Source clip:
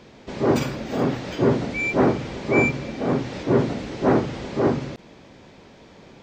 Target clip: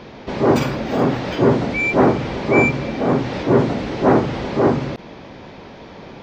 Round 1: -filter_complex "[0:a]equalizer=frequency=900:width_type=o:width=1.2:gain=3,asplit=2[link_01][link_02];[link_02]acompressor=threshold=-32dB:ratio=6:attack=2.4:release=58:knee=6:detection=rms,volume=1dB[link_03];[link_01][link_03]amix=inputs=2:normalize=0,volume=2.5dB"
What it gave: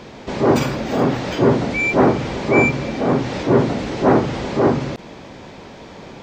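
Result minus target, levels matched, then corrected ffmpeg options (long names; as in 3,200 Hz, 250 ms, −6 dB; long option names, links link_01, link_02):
8,000 Hz band +4.0 dB
-filter_complex "[0:a]equalizer=frequency=900:width_type=o:width=1.2:gain=3,asplit=2[link_01][link_02];[link_02]acompressor=threshold=-32dB:ratio=6:attack=2.4:release=58:knee=6:detection=rms,lowpass=frequency=7900:width=0.5412,lowpass=frequency=7900:width=1.3066,volume=1dB[link_03];[link_01][link_03]amix=inputs=2:normalize=0,volume=2.5dB"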